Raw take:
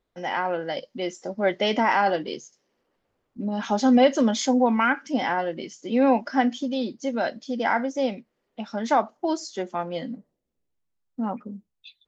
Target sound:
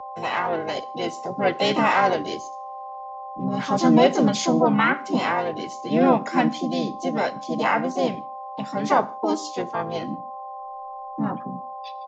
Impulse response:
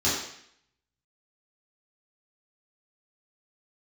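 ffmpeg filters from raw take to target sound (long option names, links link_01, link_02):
-filter_complex "[0:a]aeval=exprs='val(0)+0.0178*sin(2*PI*800*n/s)':channel_layout=same,afreqshift=-14,asplit=4[link_01][link_02][link_03][link_04];[link_02]asetrate=29433,aresample=44100,atempo=1.49831,volume=-14dB[link_05];[link_03]asetrate=33038,aresample=44100,atempo=1.33484,volume=-11dB[link_06];[link_04]asetrate=58866,aresample=44100,atempo=0.749154,volume=-4dB[link_07];[link_01][link_05][link_06][link_07]amix=inputs=4:normalize=0,asplit=2[link_08][link_09];[1:a]atrim=start_sample=2205,afade=type=out:start_time=0.22:duration=0.01,atrim=end_sample=10143[link_10];[link_09][link_10]afir=irnorm=-1:irlink=0,volume=-30.5dB[link_11];[link_08][link_11]amix=inputs=2:normalize=0,aresample=16000,aresample=44100"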